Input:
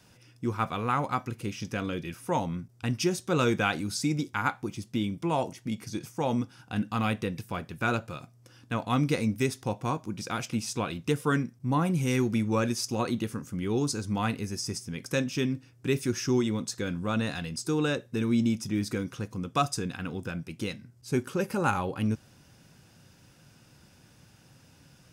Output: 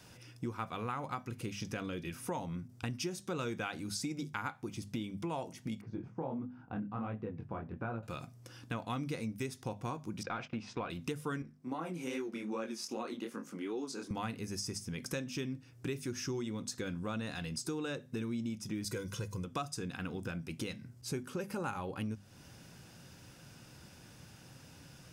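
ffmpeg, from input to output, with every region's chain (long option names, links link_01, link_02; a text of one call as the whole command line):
ffmpeg -i in.wav -filter_complex "[0:a]asettb=1/sr,asplit=3[link_01][link_02][link_03];[link_01]atrim=end=5.814[link_04];[link_02]atrim=start=5.81:end=8.03,asetpts=PTS-STARTPTS,afade=type=in:duration=0.004:curve=qsin,afade=type=out:start_time=2.216:duration=0.004:curve=qsin,lowpass=1100,flanger=delay=18:depth=7.1:speed=1.4[link_05];[link_03]atrim=start=8.026[link_06];[link_04][link_05]acrossfade=duration=0.004:curve1=hsin:curve2=qsin[link_07];[link_07][link_06]acrossfade=duration=0.004:curve1=qsin:curve2=hsin,asettb=1/sr,asplit=3[link_08][link_09][link_10];[link_08]atrim=end=10.234[link_11];[link_09]atrim=start=10.23:end=10.9,asetpts=PTS-STARTPTS,afade=type=in:duration=0.004:curve=qsin,afade=type=out:start_time=0.666:duration=0.004:curve=qsin,agate=range=-15dB:threshold=-42dB:ratio=16:release=100:detection=peak,asplit=2[link_12][link_13];[link_13]highpass=frequency=720:poles=1,volume=11dB,asoftclip=type=tanh:threshold=-17.5dB[link_14];[link_12][link_14]amix=inputs=2:normalize=0,lowpass=frequency=1500:poles=1,volume=-6dB,lowpass=3600[link_15];[link_10]atrim=start=10.896[link_16];[link_11][link_15]acrossfade=duration=0.004:curve1=hsin:curve2=qsin[link_17];[link_17][link_16]acrossfade=duration=0.004:curve1=qsin:curve2=hsin,asettb=1/sr,asplit=3[link_18][link_19][link_20];[link_18]atrim=end=11.424[link_21];[link_19]atrim=start=11.42:end=14.11,asetpts=PTS-STARTPTS,afade=type=in:duration=0.004:curve=qsin,afade=type=out:start_time=2.686:duration=0.004:curve=qsin,highshelf=frequency=4900:gain=-7.5,flanger=delay=18:depth=7.3:speed=2.5,highpass=frequency=230:width=0.5412,highpass=frequency=230:width=1.3066[link_22];[link_20]atrim=start=14.106[link_23];[link_21][link_22]acrossfade=duration=0.004:curve1=hsin:curve2=qsin[link_24];[link_24][link_23]acrossfade=duration=0.004:curve1=qsin:curve2=hsin,asettb=1/sr,asplit=3[link_25][link_26][link_27];[link_25]atrim=end=18.844[link_28];[link_26]atrim=start=18.84:end=19.45,asetpts=PTS-STARTPTS,afade=type=in:duration=0.004:curve=qsin,afade=type=out:start_time=0.606:duration=0.004:curve=qsin,bass=frequency=250:gain=3,treble=frequency=4000:gain=7,aecho=1:1:2:0.62,atrim=end_sample=26901[link_29];[link_27]atrim=start=19.446[link_30];[link_28][link_29]acrossfade=duration=0.004:curve1=hsin:curve2=qsin[link_31];[link_31][link_30]acrossfade=duration=0.004:curve1=qsin:curve2=hsin,bandreject=frequency=50:width_type=h:width=6,bandreject=frequency=100:width_type=h:width=6,bandreject=frequency=150:width_type=h:width=6,bandreject=frequency=200:width_type=h:width=6,bandreject=frequency=250:width_type=h:width=6,acompressor=threshold=-40dB:ratio=4,volume=2.5dB" out.wav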